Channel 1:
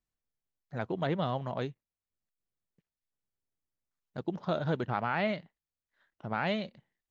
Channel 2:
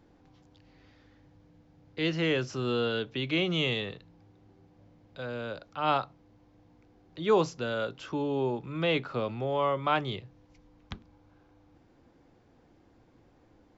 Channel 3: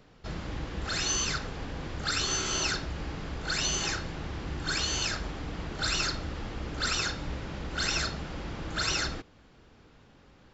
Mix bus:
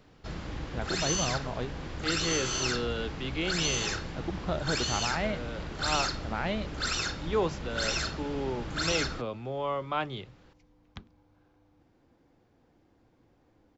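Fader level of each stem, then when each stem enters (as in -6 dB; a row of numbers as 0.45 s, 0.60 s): -1.0 dB, -4.0 dB, -1.5 dB; 0.00 s, 0.05 s, 0.00 s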